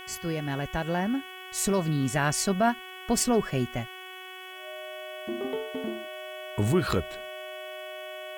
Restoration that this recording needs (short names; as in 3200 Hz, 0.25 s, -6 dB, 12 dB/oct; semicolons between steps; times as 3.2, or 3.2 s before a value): de-hum 372.1 Hz, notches 9; notch 620 Hz, Q 30; expander -35 dBFS, range -21 dB